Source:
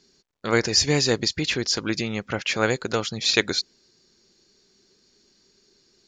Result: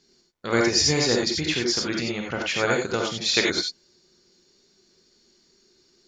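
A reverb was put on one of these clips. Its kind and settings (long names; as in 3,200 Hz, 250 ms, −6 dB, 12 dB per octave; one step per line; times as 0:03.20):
reverb whose tail is shaped and stops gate 110 ms rising, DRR −0.5 dB
level −3 dB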